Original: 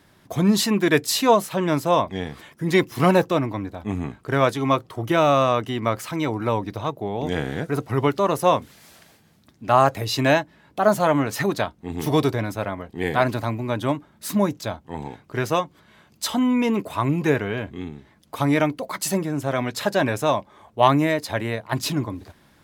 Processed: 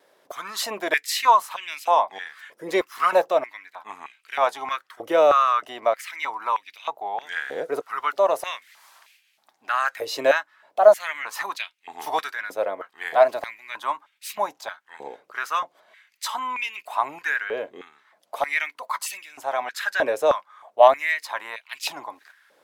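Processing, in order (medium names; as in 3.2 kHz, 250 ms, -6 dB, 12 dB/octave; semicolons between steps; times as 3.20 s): vibrato 1.9 Hz 25 cents; step-sequenced high-pass 3.2 Hz 510–2500 Hz; trim -5 dB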